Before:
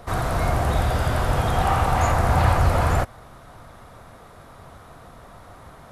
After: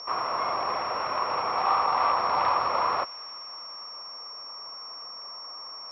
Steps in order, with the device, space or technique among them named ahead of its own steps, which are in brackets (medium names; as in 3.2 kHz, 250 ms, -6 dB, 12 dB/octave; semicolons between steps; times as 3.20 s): toy sound module (decimation joined by straight lines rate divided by 8×; class-D stage that switches slowly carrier 5.5 kHz; cabinet simulation 640–4200 Hz, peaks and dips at 710 Hz -6 dB, 1.1 kHz +9 dB, 1.6 kHz -8 dB, 2.5 kHz +6 dB); feedback echo behind a high-pass 293 ms, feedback 65%, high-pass 1.6 kHz, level -19.5 dB